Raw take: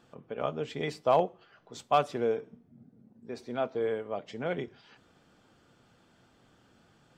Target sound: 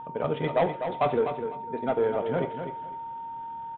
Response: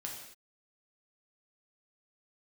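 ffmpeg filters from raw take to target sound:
-filter_complex "[0:a]aresample=8000,asoftclip=type=tanh:threshold=-24.5dB,aresample=44100,aeval=exprs='val(0)+0.00708*sin(2*PI*920*n/s)':c=same,asplit=2[a][b];[1:a]atrim=start_sample=2205[c];[b][c]afir=irnorm=-1:irlink=0,volume=-2dB[d];[a][d]amix=inputs=2:normalize=0,atempo=1.9,aemphasis=mode=reproduction:type=75fm,aecho=1:1:250|500|750:0.398|0.0796|0.0159,volume=3.5dB"

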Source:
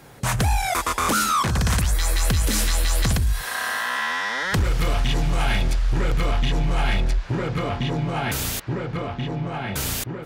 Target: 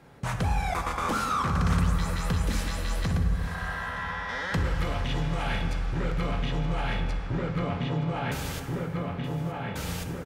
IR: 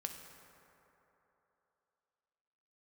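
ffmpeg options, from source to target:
-filter_complex "[0:a]asetnsamples=n=441:p=0,asendcmd='3.07 lowpass f 1300;4.29 lowpass f 3600',lowpass=f=2.5k:p=1,aecho=1:1:922:0.133[a];[1:a]atrim=start_sample=2205[b];[a][b]afir=irnorm=-1:irlink=0,volume=-3.5dB"

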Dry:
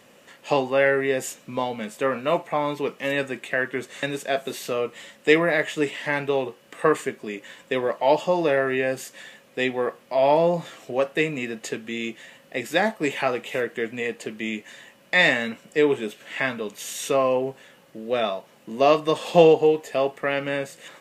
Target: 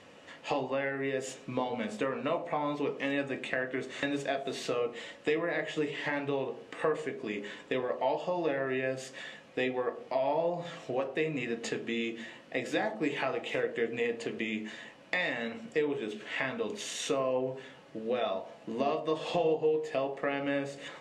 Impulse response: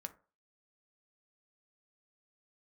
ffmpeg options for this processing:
-filter_complex "[0:a]lowpass=5.5k,acompressor=threshold=-29dB:ratio=5[a];[1:a]atrim=start_sample=2205,asetrate=22491,aresample=44100[b];[a][b]afir=irnorm=-1:irlink=0"

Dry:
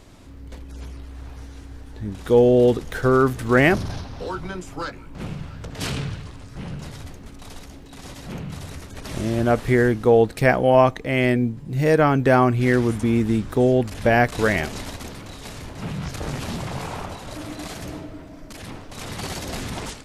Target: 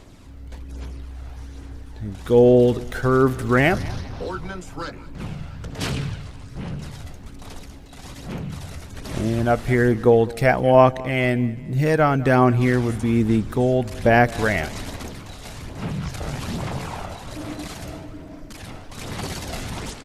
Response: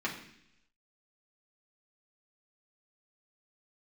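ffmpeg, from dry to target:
-filter_complex "[0:a]aphaser=in_gain=1:out_gain=1:delay=1.5:decay=0.31:speed=1.2:type=sinusoidal,asplit=2[a][b];[b]aecho=0:1:202|404|606:0.0944|0.0359|0.0136[c];[a][c]amix=inputs=2:normalize=0,volume=-1dB"

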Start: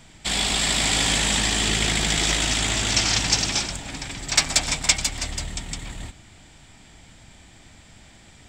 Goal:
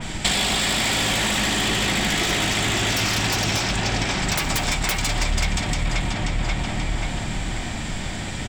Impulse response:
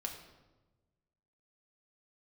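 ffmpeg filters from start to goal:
-filter_complex "[0:a]asplit=2[a][b];[b]adelay=533,lowpass=f=3.6k:p=1,volume=-7dB,asplit=2[c][d];[d]adelay=533,lowpass=f=3.6k:p=1,volume=0.51,asplit=2[e][f];[f]adelay=533,lowpass=f=3.6k:p=1,volume=0.51,asplit=2[g][h];[h]adelay=533,lowpass=f=3.6k:p=1,volume=0.51,asplit=2[i][j];[j]adelay=533,lowpass=f=3.6k:p=1,volume=0.51,asplit=2[k][l];[l]adelay=533,lowpass=f=3.6k:p=1,volume=0.51[m];[a][c][e][g][i][k][m]amix=inputs=7:normalize=0,aeval=exprs='0.75*(cos(1*acos(clip(val(0)/0.75,-1,1)))-cos(1*PI/2))+0.299*(cos(3*acos(clip(val(0)/0.75,-1,1)))-cos(3*PI/2))+0.299*(cos(7*acos(clip(val(0)/0.75,-1,1)))-cos(7*PI/2))':c=same,acompressor=threshold=-29dB:ratio=6,asplit=2[n][o];[1:a]atrim=start_sample=2205[p];[o][p]afir=irnorm=-1:irlink=0,volume=-2dB[q];[n][q]amix=inputs=2:normalize=0,adynamicequalizer=threshold=0.00891:dfrequency=3500:dqfactor=0.7:tfrequency=3500:tqfactor=0.7:attack=5:release=100:ratio=0.375:range=3:mode=cutabove:tftype=highshelf,volume=5.5dB"

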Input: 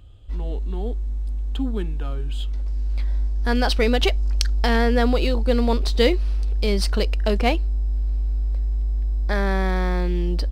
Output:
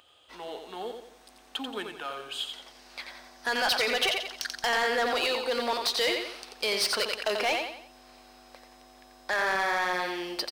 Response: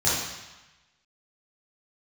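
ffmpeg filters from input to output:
-filter_complex "[0:a]alimiter=limit=-13.5dB:level=0:latency=1:release=18,highpass=790,bandreject=f=7.5k:w=12,asplit=2[a][b];[b]aecho=0:1:88|176|264|352:0.473|0.18|0.0683|0.026[c];[a][c]amix=inputs=2:normalize=0,asoftclip=type=tanh:threshold=-26dB,volume=6dB"

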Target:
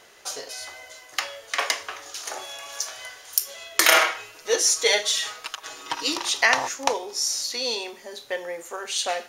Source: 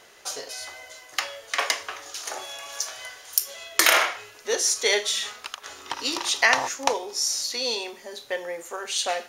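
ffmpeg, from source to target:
-filter_complex "[0:a]asettb=1/sr,asplit=3[a][b][c];[a]atrim=end=3.884[d];[b]atrim=start=3.88:end=6.13,asetpts=PTS-STARTPTS,afade=t=in:d=0.004:c=qsin,afade=t=out:st=2.246:d=0.004:c=qsin,aecho=1:1:6.3:0.82,atrim=end_sample=99225[e];[c]atrim=start=6.126[f];[d][e]acrossfade=d=0.004:c1=hsin:c2=qsin[g];[g][f]acrossfade=d=0.004:c1=qsin:c2=hsin"

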